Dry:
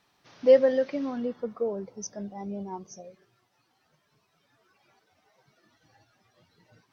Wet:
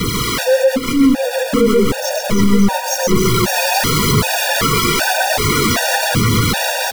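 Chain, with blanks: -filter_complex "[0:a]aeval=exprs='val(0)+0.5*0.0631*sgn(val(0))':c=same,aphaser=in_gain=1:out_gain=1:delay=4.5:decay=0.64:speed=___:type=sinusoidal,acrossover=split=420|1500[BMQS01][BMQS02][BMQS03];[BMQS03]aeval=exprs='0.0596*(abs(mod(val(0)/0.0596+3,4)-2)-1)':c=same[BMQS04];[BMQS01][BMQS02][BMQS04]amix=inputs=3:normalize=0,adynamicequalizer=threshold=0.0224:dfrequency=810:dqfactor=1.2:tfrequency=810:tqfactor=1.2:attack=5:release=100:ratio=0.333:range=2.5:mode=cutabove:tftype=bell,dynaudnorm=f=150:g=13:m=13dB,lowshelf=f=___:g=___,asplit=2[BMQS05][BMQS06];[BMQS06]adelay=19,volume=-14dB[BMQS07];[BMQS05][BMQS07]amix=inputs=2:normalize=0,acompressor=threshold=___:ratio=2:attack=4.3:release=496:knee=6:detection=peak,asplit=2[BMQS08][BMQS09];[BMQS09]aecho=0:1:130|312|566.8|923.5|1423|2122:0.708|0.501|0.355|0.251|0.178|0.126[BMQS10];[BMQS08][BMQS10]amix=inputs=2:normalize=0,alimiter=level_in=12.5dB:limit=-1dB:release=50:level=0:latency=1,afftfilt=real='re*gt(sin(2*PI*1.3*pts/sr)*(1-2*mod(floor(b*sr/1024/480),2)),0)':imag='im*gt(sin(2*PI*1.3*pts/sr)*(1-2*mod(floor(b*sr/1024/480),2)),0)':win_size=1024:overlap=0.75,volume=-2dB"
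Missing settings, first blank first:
0.96, 190, 5.5, -17dB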